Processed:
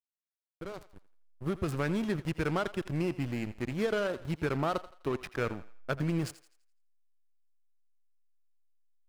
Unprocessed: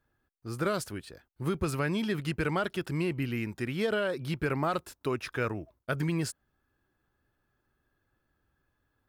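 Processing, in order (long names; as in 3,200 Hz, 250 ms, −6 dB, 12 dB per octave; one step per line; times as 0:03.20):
fade in at the beginning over 1.79 s
slack as between gear wheels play −30 dBFS
feedback echo with a high-pass in the loop 84 ms, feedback 40%, high-pass 490 Hz, level −15 dB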